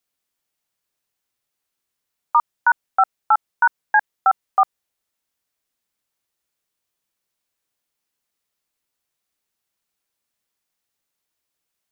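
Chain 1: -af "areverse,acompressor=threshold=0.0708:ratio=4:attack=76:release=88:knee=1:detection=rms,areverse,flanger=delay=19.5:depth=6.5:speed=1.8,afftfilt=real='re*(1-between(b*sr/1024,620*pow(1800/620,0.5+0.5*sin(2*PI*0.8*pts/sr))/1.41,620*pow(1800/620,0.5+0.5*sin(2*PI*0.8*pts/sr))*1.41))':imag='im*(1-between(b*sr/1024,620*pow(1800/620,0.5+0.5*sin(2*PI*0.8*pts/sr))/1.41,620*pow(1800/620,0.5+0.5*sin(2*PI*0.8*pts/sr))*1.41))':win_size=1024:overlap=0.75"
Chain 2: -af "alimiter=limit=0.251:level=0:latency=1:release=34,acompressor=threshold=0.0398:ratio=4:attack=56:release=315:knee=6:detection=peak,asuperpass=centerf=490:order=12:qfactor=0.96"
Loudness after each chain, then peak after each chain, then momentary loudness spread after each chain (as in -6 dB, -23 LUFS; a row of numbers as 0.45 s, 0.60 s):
-32.0 LUFS, -37.5 LUFS; -14.0 dBFS, -19.5 dBFS; 4 LU, 14 LU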